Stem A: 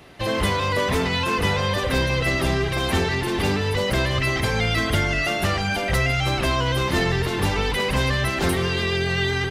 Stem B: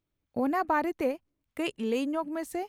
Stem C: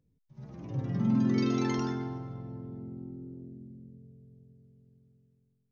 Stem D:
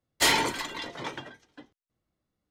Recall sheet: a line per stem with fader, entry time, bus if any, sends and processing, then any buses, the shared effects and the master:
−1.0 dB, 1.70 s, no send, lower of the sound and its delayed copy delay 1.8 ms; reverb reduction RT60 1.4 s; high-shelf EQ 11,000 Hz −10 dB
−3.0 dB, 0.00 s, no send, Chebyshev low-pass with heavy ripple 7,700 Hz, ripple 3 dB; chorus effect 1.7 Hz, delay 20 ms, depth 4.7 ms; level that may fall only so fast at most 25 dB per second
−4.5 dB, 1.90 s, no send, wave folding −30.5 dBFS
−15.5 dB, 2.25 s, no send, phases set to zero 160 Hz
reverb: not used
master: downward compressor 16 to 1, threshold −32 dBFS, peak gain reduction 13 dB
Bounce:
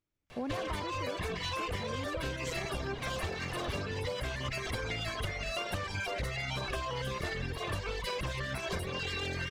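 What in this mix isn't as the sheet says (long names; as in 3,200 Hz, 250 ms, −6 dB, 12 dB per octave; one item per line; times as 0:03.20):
stem A: entry 1.70 s → 0.30 s
stem B: missing chorus effect 1.7 Hz, delay 20 ms, depth 4.7 ms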